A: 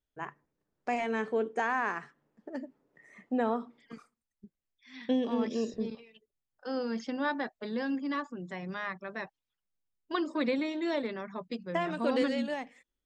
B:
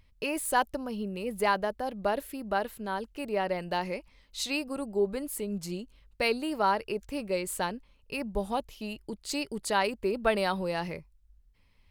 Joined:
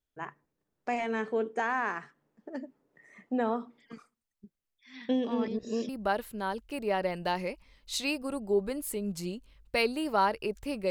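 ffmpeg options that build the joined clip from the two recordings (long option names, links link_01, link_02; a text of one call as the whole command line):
ffmpeg -i cue0.wav -i cue1.wav -filter_complex "[0:a]apad=whole_dur=10.9,atrim=end=10.9,asplit=2[link_01][link_02];[link_01]atrim=end=5.482[link_03];[link_02]atrim=start=5.478:end=5.892,asetpts=PTS-STARTPTS,areverse[link_04];[1:a]atrim=start=2.348:end=7.36[link_05];[link_03][link_04]acrossfade=duration=0.004:curve1=hsin:curve2=hsin[link_06];[link_06][link_05]acrossfade=duration=0.004:curve1=hsin:curve2=hsin" out.wav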